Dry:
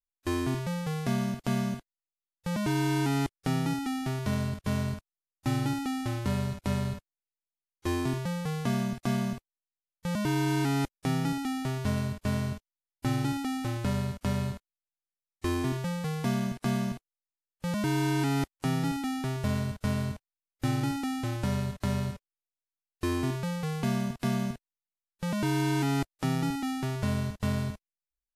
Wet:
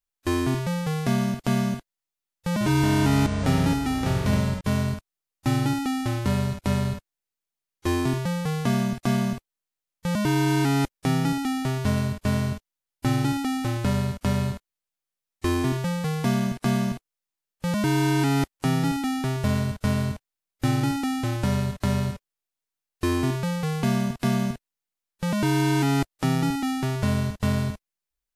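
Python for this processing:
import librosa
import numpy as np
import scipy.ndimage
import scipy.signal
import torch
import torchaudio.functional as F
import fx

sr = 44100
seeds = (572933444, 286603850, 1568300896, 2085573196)

y = fx.echo_pitch(x, sr, ms=96, semitones=-7, count=3, db_per_echo=-6.0, at=(2.51, 4.61))
y = y * librosa.db_to_amplitude(5.5)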